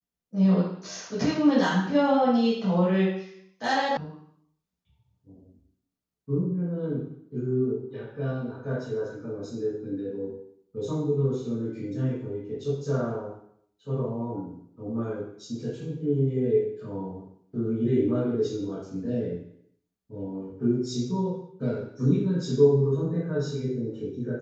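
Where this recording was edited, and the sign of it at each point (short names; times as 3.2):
3.97 sound cut off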